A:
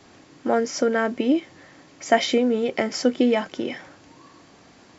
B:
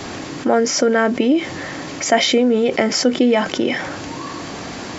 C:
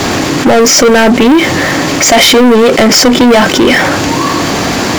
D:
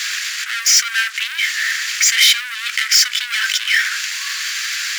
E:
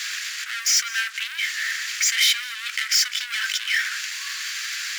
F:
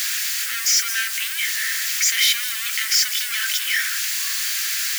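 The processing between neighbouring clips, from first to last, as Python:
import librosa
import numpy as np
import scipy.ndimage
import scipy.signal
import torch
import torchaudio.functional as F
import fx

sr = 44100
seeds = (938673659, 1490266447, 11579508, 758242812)

y1 = fx.env_flatten(x, sr, amount_pct=50)
y1 = y1 * librosa.db_to_amplitude(2.0)
y2 = fx.leveller(y1, sr, passes=5)
y3 = scipy.signal.sosfilt(scipy.signal.butter(8, 1500.0, 'highpass', fs=sr, output='sos'), y2)
y3 = y3 * librosa.db_to_amplitude(-4.5)
y4 = y3 + 10.0 ** (-19.0 / 20.0) * np.pad(y3, (int(203 * sr / 1000.0), 0))[:len(y3)]
y4 = y4 * librosa.db_to_amplitude(-7.0)
y5 = y4 + 0.5 * 10.0 ** (-18.5 / 20.0) * np.diff(np.sign(y4), prepend=np.sign(y4[:1]))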